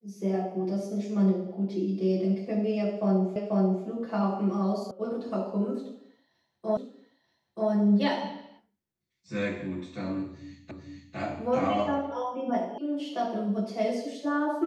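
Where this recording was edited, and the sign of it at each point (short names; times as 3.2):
3.36 repeat of the last 0.49 s
4.91 sound cut off
6.77 repeat of the last 0.93 s
10.71 repeat of the last 0.45 s
12.78 sound cut off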